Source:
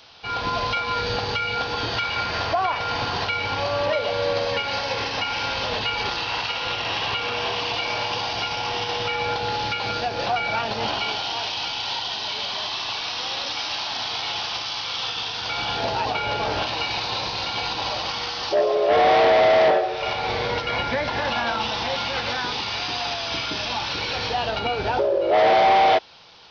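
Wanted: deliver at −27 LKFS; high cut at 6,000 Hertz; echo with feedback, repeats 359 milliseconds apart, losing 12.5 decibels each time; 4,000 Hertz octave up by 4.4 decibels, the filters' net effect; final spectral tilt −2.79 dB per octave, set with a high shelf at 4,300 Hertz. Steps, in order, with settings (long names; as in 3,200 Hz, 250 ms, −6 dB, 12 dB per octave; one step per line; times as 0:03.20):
low-pass filter 6,000 Hz
parametric band 4,000 Hz +4.5 dB
high-shelf EQ 4,300 Hz +3.5 dB
repeating echo 359 ms, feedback 24%, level −12.5 dB
level −6 dB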